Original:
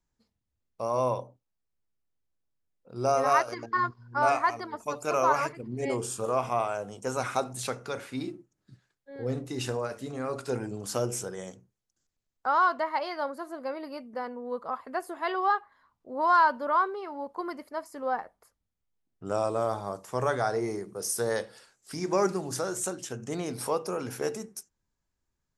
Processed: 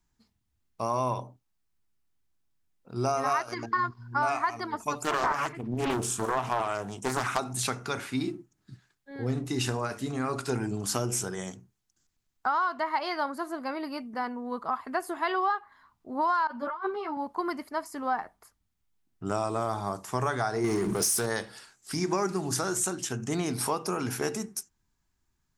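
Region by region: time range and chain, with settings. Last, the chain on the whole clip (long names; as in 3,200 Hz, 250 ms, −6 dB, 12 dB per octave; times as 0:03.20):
0:05.03–0:07.39: notch filter 4,700 Hz, Q 5.9 + highs frequency-modulated by the lows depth 0.7 ms
0:16.47–0:17.17: high-shelf EQ 4,000 Hz −8 dB + compressor whose output falls as the input rises −30 dBFS, ratio −0.5 + string-ensemble chorus
0:20.64–0:21.26: power curve on the samples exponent 0.7 + envelope flattener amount 50%
whole clip: parametric band 520 Hz −12 dB 0.42 octaves; downward compressor 6 to 1, threshold −30 dBFS; level +6 dB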